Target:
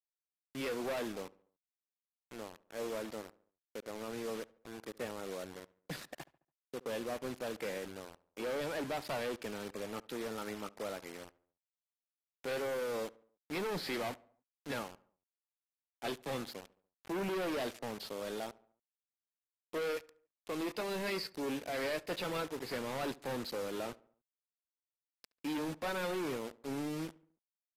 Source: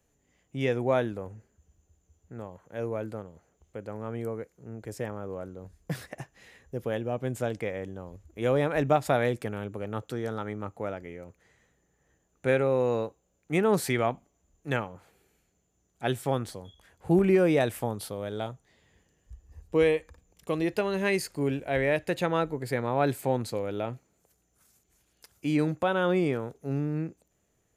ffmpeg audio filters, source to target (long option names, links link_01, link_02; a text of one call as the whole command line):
ffmpeg -i in.wav -filter_complex "[0:a]highpass=frequency=190:width=0.5412,highpass=frequency=190:width=1.3066,aemphasis=mode=production:type=50fm,aresample=11025,asoftclip=type=hard:threshold=-29dB,aresample=44100,acrusher=bits=6:mix=0:aa=0.000001,aeval=exprs='sgn(val(0))*max(abs(val(0))-0.00188,0)':channel_layout=same,asplit=2[link_01][link_02];[link_02]adelay=71,lowpass=frequency=2200:poles=1,volume=-21dB,asplit=2[link_03][link_04];[link_04]adelay=71,lowpass=frequency=2200:poles=1,volume=0.5,asplit=2[link_05][link_06];[link_06]adelay=71,lowpass=frequency=2200:poles=1,volume=0.5,asplit=2[link_07][link_08];[link_08]adelay=71,lowpass=frequency=2200:poles=1,volume=0.5[link_09];[link_01][link_03][link_05][link_07][link_09]amix=inputs=5:normalize=0,volume=-4dB" -ar 32000 -c:a aac -b:a 48k out.aac